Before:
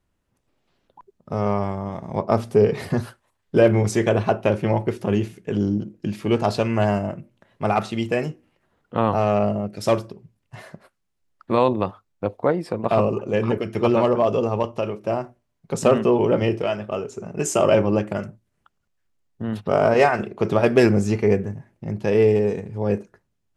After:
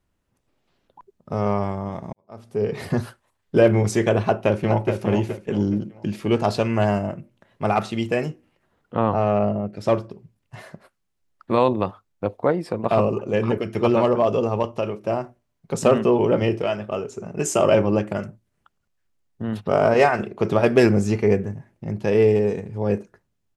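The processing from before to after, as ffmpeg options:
ffmpeg -i in.wav -filter_complex "[0:a]asplit=2[link_01][link_02];[link_02]afade=type=in:start_time=4.21:duration=0.01,afade=type=out:start_time=4.94:duration=0.01,aecho=0:1:420|840|1260|1680:0.473151|0.141945|0.0425836|0.0127751[link_03];[link_01][link_03]amix=inputs=2:normalize=0,asettb=1/sr,asplit=3[link_04][link_05][link_06];[link_04]atrim=end=8.954[link_07];[link_05]atrim=start=8.95:end=10.11,asetpts=PTS-STARTPTS,afade=type=in:duration=0.004:curve=qsin,afade=type=out:start_time=1.156:duration=0.004:curve=qsin,lowpass=frequency=2100:poles=1[link_08];[link_06]atrim=start=10.106[link_09];[link_07][link_08]acrossfade=duration=0.004:curve1=hsin:curve2=qsin[link_10];[link_10][link_09]acrossfade=duration=0.004:curve1=qsin:curve2=hsin,asplit=2[link_11][link_12];[link_11]atrim=end=2.13,asetpts=PTS-STARTPTS,afade=type=out:start_time=2.126:duration=0.004:curve=hsin[link_13];[link_12]atrim=start=2.13,asetpts=PTS-STARTPTS,afade=type=in:duration=0.73:curve=qua[link_14];[link_13][link_14]concat=n=2:v=0:a=1" out.wav

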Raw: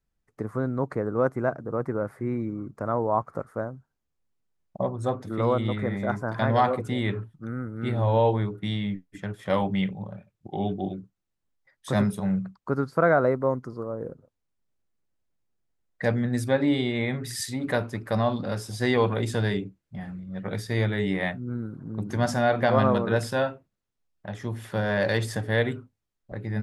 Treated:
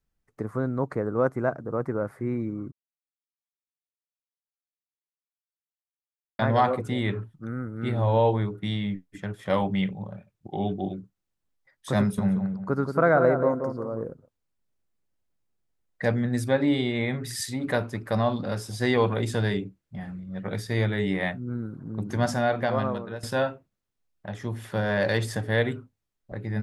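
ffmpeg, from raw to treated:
ffmpeg -i in.wav -filter_complex "[0:a]asettb=1/sr,asplit=3[link_01][link_02][link_03];[link_01]atrim=end=12.004[link_04];[link_02]atrim=start=12:end=14.04,asetpts=PTS-STARTPTS,afade=type=in:duration=0.004:curve=qsin,afade=type=out:start_time=2.036:duration=0.004:curve=qsin,asplit=2[link_05][link_06];[link_06]adelay=178,lowpass=frequency=1400:poles=1,volume=-6dB,asplit=2[link_07][link_08];[link_08]adelay=178,lowpass=frequency=1400:poles=1,volume=0.33,asplit=2[link_09][link_10];[link_10]adelay=178,lowpass=frequency=1400:poles=1,volume=0.33,asplit=2[link_11][link_12];[link_12]adelay=178,lowpass=frequency=1400:poles=1,volume=0.33[link_13];[link_05][link_07][link_09][link_11][link_13]amix=inputs=5:normalize=0,atrim=end_sample=89964[link_14];[link_03]atrim=start=14.036[link_15];[link_04][link_14]acrossfade=duration=0.004:curve1=hsin:curve2=qsin[link_16];[link_16][link_15]acrossfade=duration=0.004:curve1=qsin:curve2=hsin,asplit=4[link_17][link_18][link_19][link_20];[link_17]atrim=end=2.72,asetpts=PTS-STARTPTS,afade=type=out:start_time=2.716:duration=0.004:curve=hsin[link_21];[link_18]atrim=start=2.72:end=6.39,asetpts=PTS-STARTPTS,volume=0[link_22];[link_19]atrim=start=6.39:end=23.23,asetpts=PTS-STARTPTS,afade=type=in:duration=0.004:curve=hsin,afade=type=out:start_time=15.85:duration=0.99:silence=0.16788[link_23];[link_20]atrim=start=23.23,asetpts=PTS-STARTPTS,afade=type=in:duration=0.004:curve=hsin:silence=0.16788[link_24];[link_21][link_22][link_23][link_24]concat=n=4:v=0:a=1" out.wav

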